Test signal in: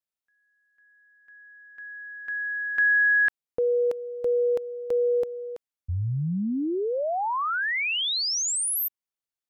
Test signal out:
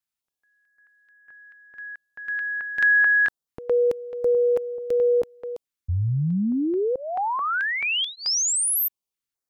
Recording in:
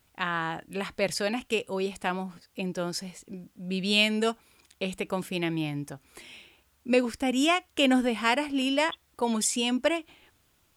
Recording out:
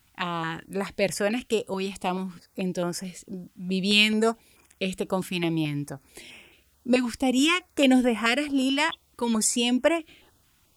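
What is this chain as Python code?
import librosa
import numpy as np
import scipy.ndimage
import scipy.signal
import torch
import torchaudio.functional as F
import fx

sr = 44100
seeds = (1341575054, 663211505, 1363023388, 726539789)

y = fx.filter_held_notch(x, sr, hz=4.6, low_hz=510.0, high_hz=4100.0)
y = F.gain(torch.from_numpy(y), 4.0).numpy()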